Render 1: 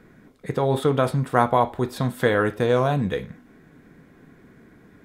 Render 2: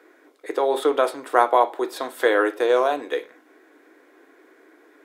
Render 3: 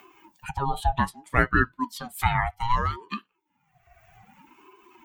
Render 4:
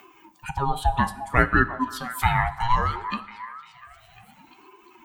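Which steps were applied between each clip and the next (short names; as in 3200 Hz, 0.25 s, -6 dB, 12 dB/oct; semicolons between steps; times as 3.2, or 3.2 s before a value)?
elliptic high-pass 310 Hz, stop band 40 dB; gain +2.5 dB
per-bin expansion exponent 2; upward compressor, threshold -25 dBFS; ring modulator with a swept carrier 540 Hz, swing 30%, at 0.63 Hz; gain +2 dB
delay with a stepping band-pass 0.349 s, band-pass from 830 Hz, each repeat 0.7 oct, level -10.5 dB; plate-style reverb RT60 0.97 s, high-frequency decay 0.75×, DRR 13 dB; gain +2 dB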